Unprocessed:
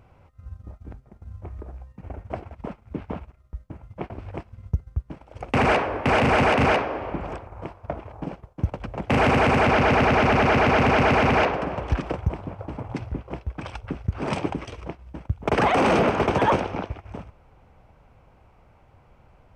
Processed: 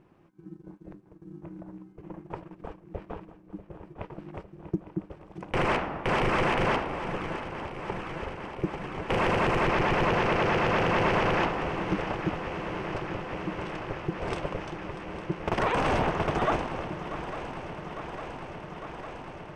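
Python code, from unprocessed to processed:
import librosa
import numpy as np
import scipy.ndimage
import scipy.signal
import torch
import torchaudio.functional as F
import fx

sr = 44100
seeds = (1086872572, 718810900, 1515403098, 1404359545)

y = x * np.sin(2.0 * np.pi * 250.0 * np.arange(len(x)) / sr)
y = fx.echo_swing(y, sr, ms=854, ratio=3, feedback_pct=79, wet_db=-13.5)
y = y * librosa.db_to_amplitude(-3.5)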